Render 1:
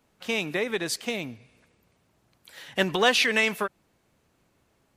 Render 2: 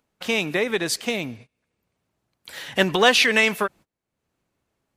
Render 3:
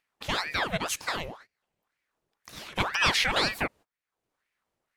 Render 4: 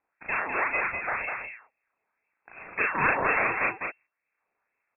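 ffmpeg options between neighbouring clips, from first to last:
ffmpeg -i in.wav -filter_complex "[0:a]asplit=2[link_01][link_02];[link_02]acompressor=mode=upward:threshold=-30dB:ratio=2.5,volume=-0.5dB[link_03];[link_01][link_03]amix=inputs=2:normalize=0,agate=range=-28dB:threshold=-41dB:ratio=16:detection=peak,volume=-1dB" out.wav
ffmpeg -i in.wav -filter_complex "[0:a]asplit=2[link_01][link_02];[link_02]alimiter=limit=-9.5dB:level=0:latency=1:release=104,volume=-0.5dB[link_03];[link_01][link_03]amix=inputs=2:normalize=0,aeval=exprs='val(0)*sin(2*PI*1200*n/s+1200*0.8/2*sin(2*PI*2*n/s))':channel_layout=same,volume=-9dB" out.wav
ffmpeg -i in.wav -filter_complex "[0:a]asplit=2[link_01][link_02];[link_02]adelay=36,volume=-2dB[link_03];[link_01][link_03]amix=inputs=2:normalize=0,aecho=1:1:202:0.562,lowpass=frequency=2300:width_type=q:width=0.5098,lowpass=frequency=2300:width_type=q:width=0.6013,lowpass=frequency=2300:width_type=q:width=0.9,lowpass=frequency=2300:width_type=q:width=2.563,afreqshift=-2700" out.wav

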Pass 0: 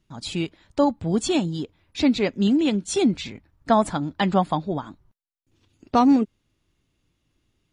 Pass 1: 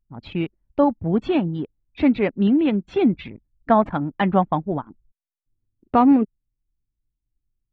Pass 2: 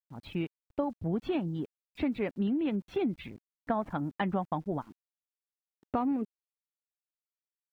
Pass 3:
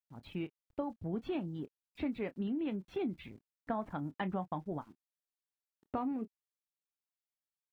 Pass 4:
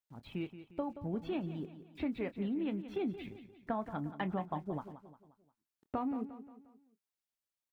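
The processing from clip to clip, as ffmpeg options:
ffmpeg -i in.wav -af "anlmdn=6.31,lowpass=frequency=2600:width=0.5412,lowpass=frequency=2600:width=1.3066,volume=2dB" out.wav
ffmpeg -i in.wav -af "acompressor=threshold=-19dB:ratio=8,aeval=exprs='val(0)*gte(abs(val(0)),0.00282)':channel_layout=same,volume=-7.5dB" out.wav
ffmpeg -i in.wav -filter_complex "[0:a]asplit=2[link_01][link_02];[link_02]adelay=27,volume=-14dB[link_03];[link_01][link_03]amix=inputs=2:normalize=0,volume=-6dB" out.wav
ffmpeg -i in.wav -af "aecho=1:1:177|354|531|708:0.237|0.107|0.048|0.0216" out.wav

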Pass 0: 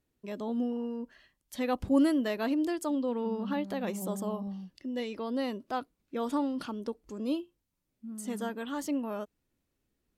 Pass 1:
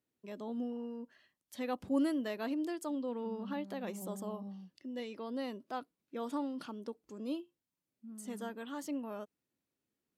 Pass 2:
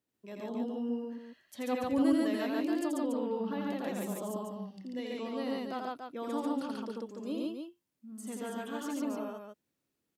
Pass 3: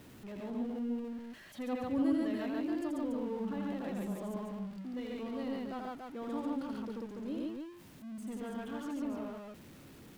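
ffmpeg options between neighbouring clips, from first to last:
ffmpeg -i in.wav -af "highpass=140,volume=-6.5dB" out.wav
ffmpeg -i in.wav -af "aecho=1:1:84.55|139.9|285.7:0.708|1|0.562" out.wav
ffmpeg -i in.wav -af "aeval=exprs='val(0)+0.5*0.00841*sgn(val(0))':channel_layout=same,bass=frequency=250:gain=7,treble=frequency=4000:gain=-7,volume=-6.5dB" out.wav

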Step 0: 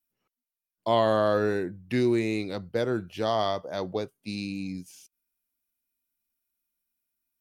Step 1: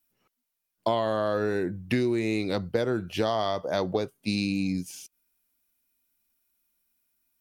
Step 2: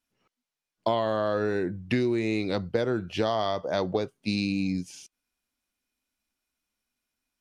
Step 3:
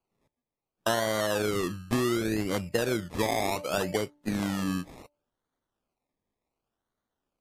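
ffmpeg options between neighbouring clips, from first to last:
ffmpeg -i in.wav -af "acompressor=threshold=-30dB:ratio=12,volume=8dB" out.wav
ffmpeg -i in.wav -af "lowpass=6800" out.wav
ffmpeg -i in.wav -af "acrusher=samples=24:mix=1:aa=0.000001:lfo=1:lforange=14.4:lforate=0.68,bandreject=frequency=293:width_type=h:width=4,bandreject=frequency=586:width_type=h:width=4,bandreject=frequency=879:width_type=h:width=4,volume=-1dB" -ar 32000 -c:a libmp3lame -b:a 56k out.mp3

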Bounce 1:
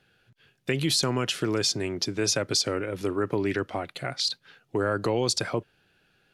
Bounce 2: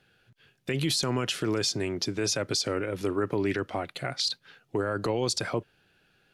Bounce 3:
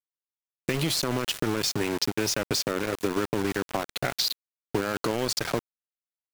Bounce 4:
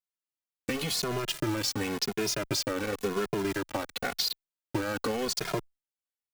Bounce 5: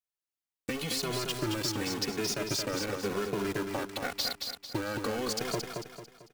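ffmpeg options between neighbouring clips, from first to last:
ffmpeg -i in.wav -af "alimiter=limit=-18dB:level=0:latency=1:release=29" out.wav
ffmpeg -i in.wav -af "acompressor=threshold=-29dB:ratio=10,aeval=exprs='val(0)*gte(abs(val(0)),0.0211)':channel_layout=same,volume=7dB" out.wav
ffmpeg -i in.wav -filter_complex "[0:a]asplit=2[link_01][link_02];[link_02]adelay=2.4,afreqshift=-0.93[link_03];[link_01][link_03]amix=inputs=2:normalize=1" out.wav
ffmpeg -i in.wav -af "aecho=1:1:223|446|669|892|1115:0.562|0.225|0.09|0.036|0.0144,volume=-3dB" out.wav

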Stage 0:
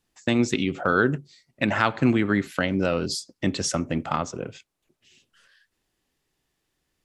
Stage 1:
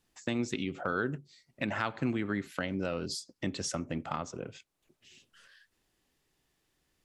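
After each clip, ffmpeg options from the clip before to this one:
ffmpeg -i in.wav -af "acompressor=threshold=-48dB:ratio=1.5" out.wav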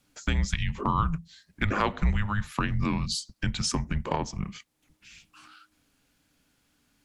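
ffmpeg -i in.wav -af "afreqshift=-310,volume=7dB" out.wav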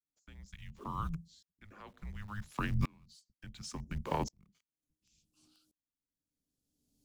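ffmpeg -i in.wav -filter_complex "[0:a]acrossover=split=350|580|4000[link_01][link_02][link_03][link_04];[link_03]aeval=exprs='val(0)*gte(abs(val(0)),0.00668)':channel_layout=same[link_05];[link_01][link_02][link_05][link_04]amix=inputs=4:normalize=0,aeval=exprs='val(0)*pow(10,-34*if(lt(mod(-0.7*n/s,1),2*abs(-0.7)/1000),1-mod(-0.7*n/s,1)/(2*abs(-0.7)/1000),(mod(-0.7*n/s,1)-2*abs(-0.7)/1000)/(1-2*abs(-0.7)/1000))/20)':channel_layout=same,volume=-2dB" out.wav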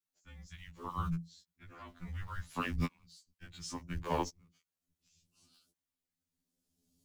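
ffmpeg -i in.wav -af "afftfilt=real='re*2*eq(mod(b,4),0)':imag='im*2*eq(mod(b,4),0)':win_size=2048:overlap=0.75,volume=4dB" out.wav

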